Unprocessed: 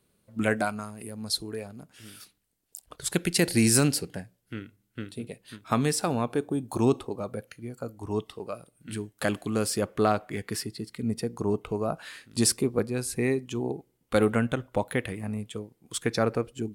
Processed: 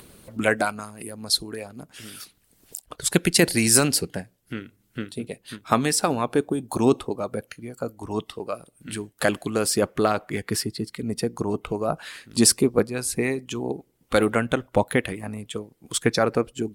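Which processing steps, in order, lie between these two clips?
harmonic-percussive split harmonic -9 dB; upward compressor, threshold -41 dBFS; gain +7 dB

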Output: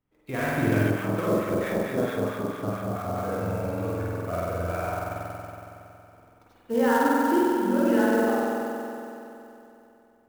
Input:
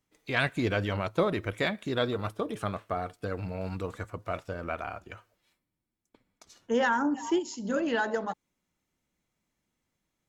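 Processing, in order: de-esser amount 90%; tape spacing loss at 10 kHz 31 dB; spring tank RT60 3 s, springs 46 ms, chirp 50 ms, DRR -8 dB; 0.9–3.16 harmonic tremolo 4.5 Hz, crossover 1100 Hz; clock jitter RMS 0.021 ms

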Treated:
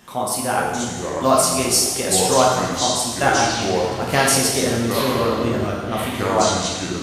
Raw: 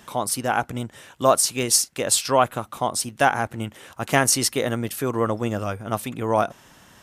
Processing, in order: plate-style reverb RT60 1.3 s, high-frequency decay 0.85×, DRR -3 dB; echoes that change speed 0.354 s, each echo -6 st, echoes 3, each echo -6 dB; gain -2 dB

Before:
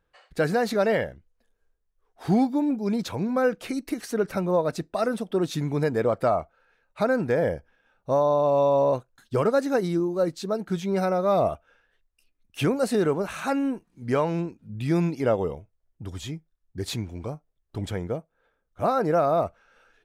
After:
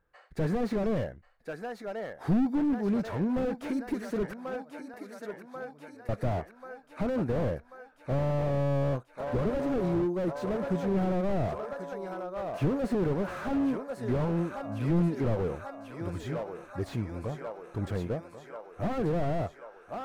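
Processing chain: resonant high shelf 2300 Hz -6 dB, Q 1.5; 4.32–6.09 flipped gate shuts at -28 dBFS, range -31 dB; on a send: thinning echo 1.088 s, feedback 69%, high-pass 310 Hz, level -11 dB; on the sum: slew limiter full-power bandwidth 22 Hz; gain -1.5 dB

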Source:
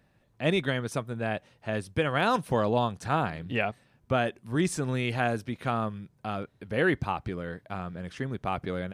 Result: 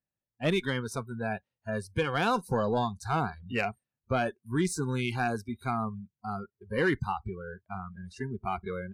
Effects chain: added harmonics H 8 -31 dB, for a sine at -12 dBFS; soft clip -17.5 dBFS, distortion -18 dB; spectral noise reduction 29 dB

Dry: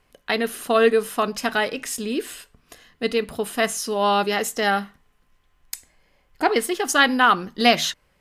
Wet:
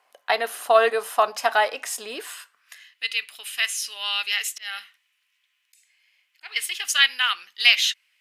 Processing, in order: 4.44–6.57 auto swell 0.243 s; high-pass sweep 740 Hz -> 2500 Hz, 2.14–2.93; gain -1 dB

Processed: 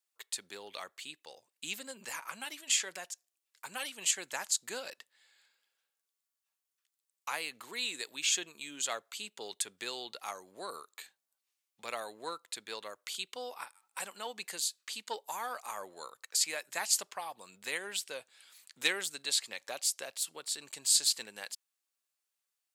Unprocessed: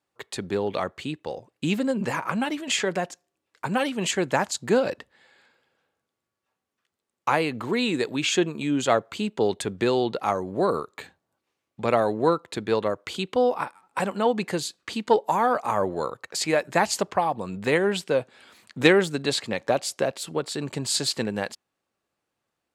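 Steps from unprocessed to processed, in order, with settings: differentiator; gain +1 dB

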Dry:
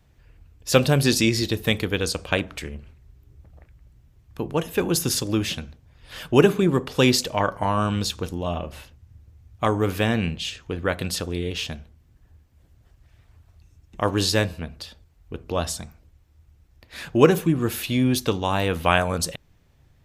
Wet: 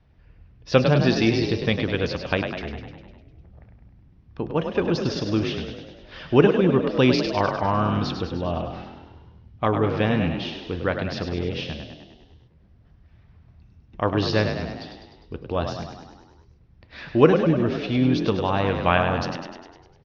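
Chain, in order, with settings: steep low-pass 5800 Hz 72 dB/oct; high shelf 4200 Hz -11.5 dB; frequency-shifting echo 0.101 s, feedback 59%, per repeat +40 Hz, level -7 dB

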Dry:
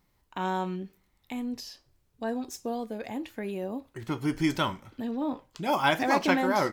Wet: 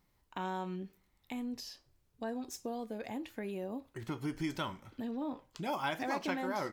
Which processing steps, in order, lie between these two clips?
compressor 2:1, threshold -34 dBFS, peak gain reduction 9 dB; gain -3.5 dB

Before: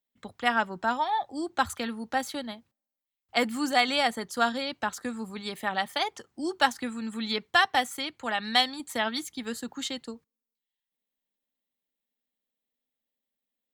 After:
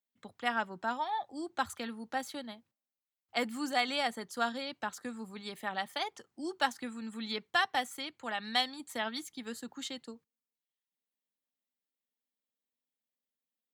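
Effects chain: HPF 100 Hz; gain -7 dB

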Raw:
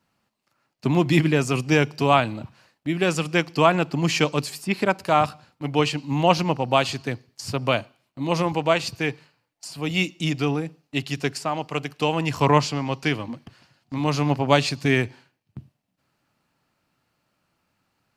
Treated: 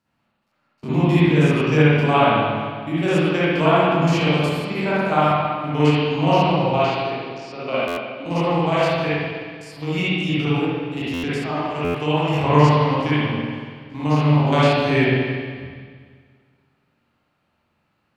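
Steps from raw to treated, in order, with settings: stepped spectrum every 50 ms; 6.71–8.26 speaker cabinet 300–5800 Hz, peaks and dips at 950 Hz -7 dB, 1700 Hz -7 dB, 3300 Hz -7 dB; spring tank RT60 1.8 s, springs 47/60 ms, chirp 25 ms, DRR -10 dB; stuck buffer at 7.87/11.13/11.84, samples 512, times 8; gain -5.5 dB

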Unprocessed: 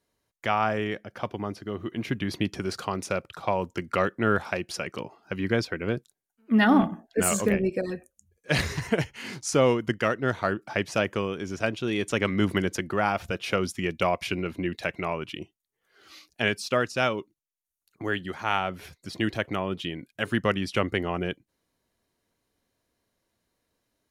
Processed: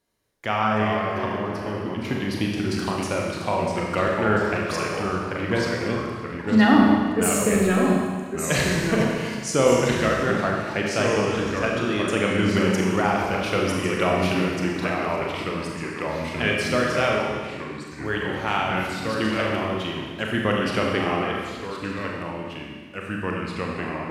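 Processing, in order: echoes that change speed 0.277 s, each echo -2 st, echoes 3, each echo -6 dB; Schroeder reverb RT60 1.6 s, combs from 29 ms, DRR -1 dB

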